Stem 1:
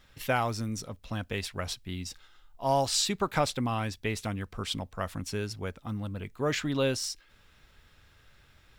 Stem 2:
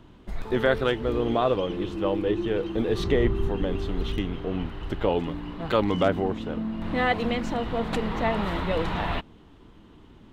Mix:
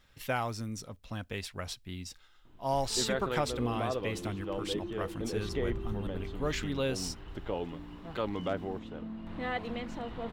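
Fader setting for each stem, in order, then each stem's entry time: −4.5, −11.0 decibels; 0.00, 2.45 seconds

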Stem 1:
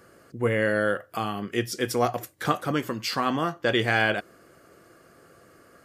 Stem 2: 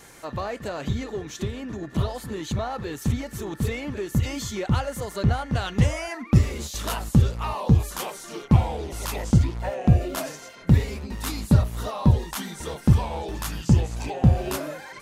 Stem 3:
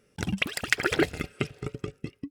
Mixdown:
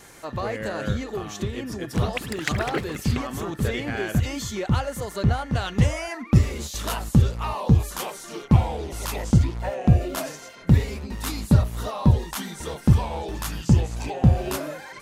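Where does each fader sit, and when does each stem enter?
−9.5, +0.5, −4.0 decibels; 0.00, 0.00, 1.75 seconds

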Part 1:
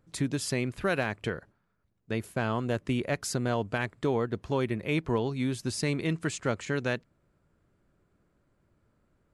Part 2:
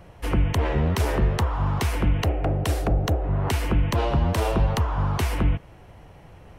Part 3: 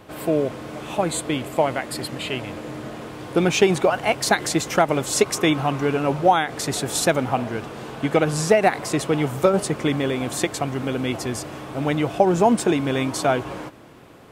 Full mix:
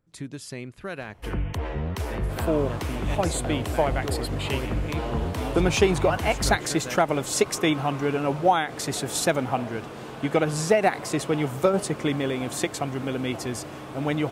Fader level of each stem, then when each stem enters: −6.5, −7.0, −3.5 decibels; 0.00, 1.00, 2.20 seconds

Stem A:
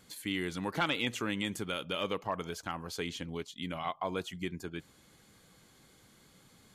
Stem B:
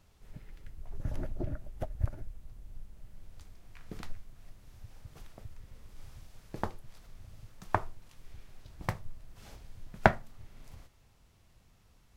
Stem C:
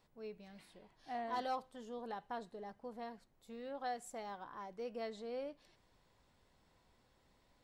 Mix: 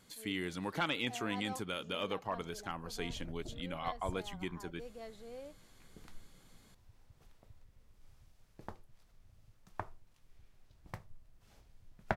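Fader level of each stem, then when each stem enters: −3.5, −12.5, −5.5 decibels; 0.00, 2.05, 0.00 seconds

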